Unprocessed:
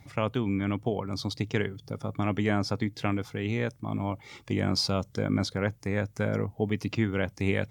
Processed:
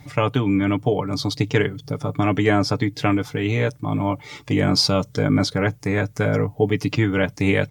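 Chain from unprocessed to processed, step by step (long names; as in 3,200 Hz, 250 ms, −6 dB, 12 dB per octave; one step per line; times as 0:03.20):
comb filter 6.8 ms
level +7.5 dB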